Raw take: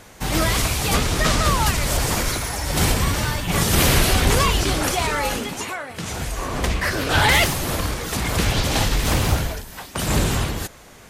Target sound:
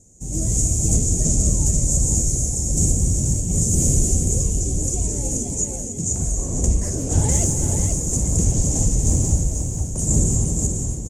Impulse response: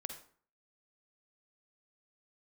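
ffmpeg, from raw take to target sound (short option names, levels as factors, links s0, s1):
-af "firequalizer=gain_entry='entry(110,0);entry(1400,-29);entry(2400,-28);entry(4100,-29);entry(6800,10);entry(12000,-18)':delay=0.05:min_phase=1,aecho=1:1:283|483:0.266|0.501,dynaudnorm=f=270:g=3:m=3.35,asetnsamples=n=441:p=0,asendcmd='6.16 equalizer g -3',equalizer=f=1200:t=o:w=0.98:g=-14.5,volume=0.596"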